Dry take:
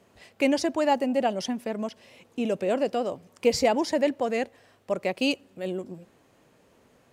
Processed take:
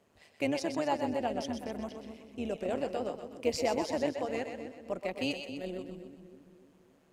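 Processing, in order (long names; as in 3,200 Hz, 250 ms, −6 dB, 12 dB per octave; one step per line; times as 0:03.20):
on a send: echo with a time of its own for lows and highs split 420 Hz, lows 279 ms, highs 126 ms, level −7 dB
on the sum: amplitude modulation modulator 150 Hz, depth 40%
level −6 dB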